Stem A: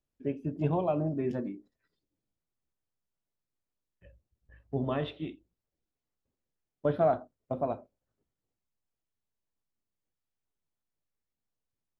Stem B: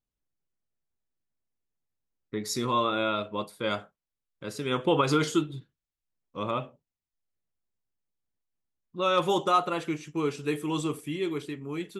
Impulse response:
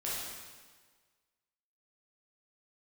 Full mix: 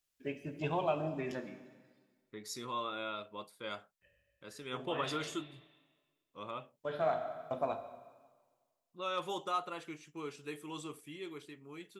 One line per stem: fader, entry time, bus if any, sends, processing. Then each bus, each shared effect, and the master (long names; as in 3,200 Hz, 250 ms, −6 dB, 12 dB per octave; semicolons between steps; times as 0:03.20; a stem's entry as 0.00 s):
−1.0 dB, 0.00 s, send −12 dB, tilt shelving filter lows −10 dB; mains-hum notches 60/120/180/240/300 Hz; automatic ducking −14 dB, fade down 1.05 s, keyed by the second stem
−10.5 dB, 0.00 s, no send, low-shelf EQ 400 Hz −8 dB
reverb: on, RT60 1.5 s, pre-delay 8 ms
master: no processing